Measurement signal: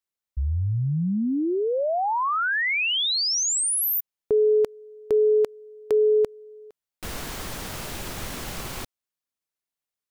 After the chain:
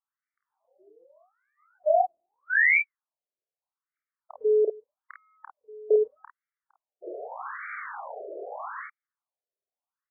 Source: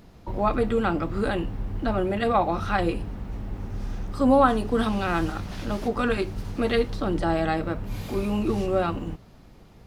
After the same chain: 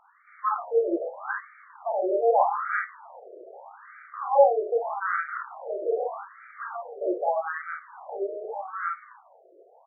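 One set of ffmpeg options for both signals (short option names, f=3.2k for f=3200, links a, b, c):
-filter_complex "[0:a]asplit=2[a][b];[b]acompressor=threshold=-28dB:ratio=6:attack=2.5:release=24:knee=1:detection=peak,volume=0dB[c];[a][c]amix=inputs=2:normalize=0,aecho=1:1:30|50:0.531|0.668,afftfilt=real='re*between(b*sr/1024,480*pow(1700/480,0.5+0.5*sin(2*PI*0.81*pts/sr))/1.41,480*pow(1700/480,0.5+0.5*sin(2*PI*0.81*pts/sr))*1.41)':imag='im*between(b*sr/1024,480*pow(1700/480,0.5+0.5*sin(2*PI*0.81*pts/sr))/1.41,480*pow(1700/480,0.5+0.5*sin(2*PI*0.81*pts/sr))*1.41)':win_size=1024:overlap=0.75,volume=-2dB"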